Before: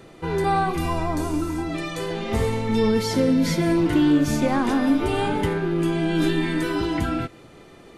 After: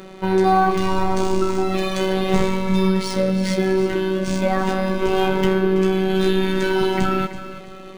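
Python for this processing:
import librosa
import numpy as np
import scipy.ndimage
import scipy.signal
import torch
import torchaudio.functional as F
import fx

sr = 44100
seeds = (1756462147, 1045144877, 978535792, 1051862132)

p1 = fx.rider(x, sr, range_db=4, speed_s=0.5)
p2 = fx.robotise(p1, sr, hz=189.0)
p3 = p2 + fx.echo_feedback(p2, sr, ms=331, feedback_pct=34, wet_db=-12.5, dry=0)
p4 = np.interp(np.arange(len(p3)), np.arange(len(p3))[::3], p3[::3])
y = p4 * 10.0 ** (6.5 / 20.0)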